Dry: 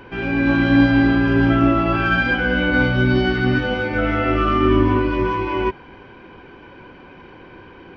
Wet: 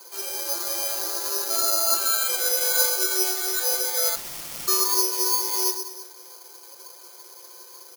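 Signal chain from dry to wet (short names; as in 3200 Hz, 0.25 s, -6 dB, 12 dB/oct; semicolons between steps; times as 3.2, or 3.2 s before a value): speakerphone echo 0.11 s, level -14 dB; Schroeder reverb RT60 1.2 s, combs from 26 ms, DRR 9.5 dB; flange 1 Hz, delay 4.9 ms, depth 7.7 ms, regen +71%; steep high-pass 360 Hz 96 dB/oct; bell 1300 Hz +9 dB 2.3 oct; 4.15–4.68 wrapped overs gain 22.5 dB; high shelf 2100 Hz -11 dB; notch 1600 Hz, Q 8.7; comb 5.8 ms, depth 70%; careless resampling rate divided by 8×, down none, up zero stuff; gain -11.5 dB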